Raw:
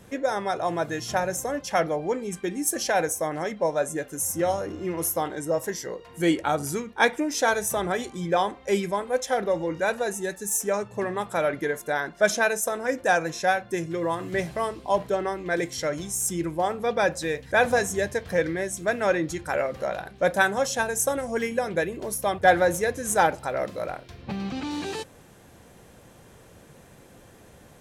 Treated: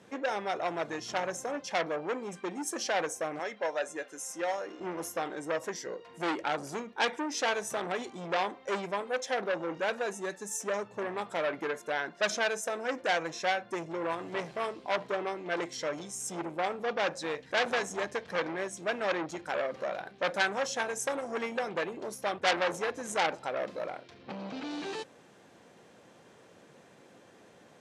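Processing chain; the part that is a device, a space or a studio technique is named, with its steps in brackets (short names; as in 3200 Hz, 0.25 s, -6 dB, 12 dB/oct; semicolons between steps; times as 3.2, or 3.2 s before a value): 3.39–4.8 weighting filter A; public-address speaker with an overloaded transformer (core saturation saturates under 3700 Hz; BPF 210–6200 Hz); gain -3.5 dB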